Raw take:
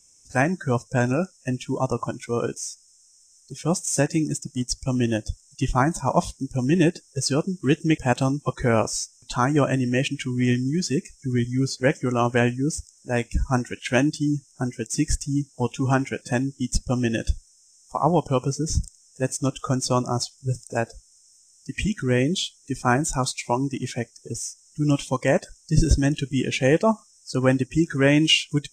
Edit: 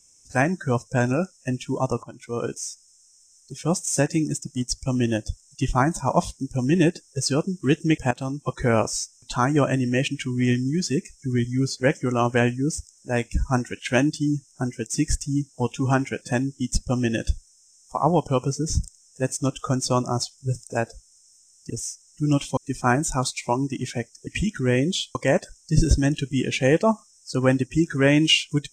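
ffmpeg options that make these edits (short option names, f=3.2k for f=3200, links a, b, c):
-filter_complex "[0:a]asplit=7[a][b][c][d][e][f][g];[a]atrim=end=2.03,asetpts=PTS-STARTPTS,afade=t=out:st=2.026:d=0.004:c=hsin:silence=0.158489[h];[b]atrim=start=2.03:end=8.11,asetpts=PTS-STARTPTS,afade=t=in:d=0.53:silence=0.158489,afade=t=out:st=6.076:d=0.004:c=hsin:silence=0.223872[i];[c]atrim=start=8.11:end=21.702,asetpts=PTS-STARTPTS,afade=t=in:d=0.49:silence=0.223872[j];[d]atrim=start=24.278:end=25.152[k];[e]atrim=start=22.578:end=24.282[l];[f]atrim=start=21.698:end=22.582[m];[g]atrim=start=25.148[n];[h][i][j]concat=n=3:v=0:a=1[o];[o][k]acrossfade=d=0.004:c1=hsin:c2=hsin[p];[p][l]acrossfade=d=0.004:c1=hsin:c2=hsin[q];[q][m]acrossfade=d=0.004:c1=hsin:c2=hsin[r];[r][n]acrossfade=d=0.004:c1=hsin:c2=hsin"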